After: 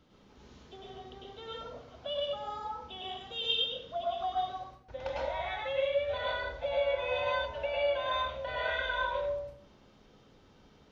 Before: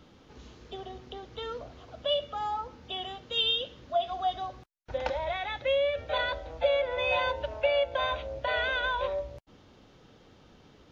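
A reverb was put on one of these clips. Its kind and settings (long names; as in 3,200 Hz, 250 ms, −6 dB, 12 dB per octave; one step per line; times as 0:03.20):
dense smooth reverb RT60 0.6 s, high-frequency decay 0.8×, pre-delay 90 ms, DRR −5 dB
level −9.5 dB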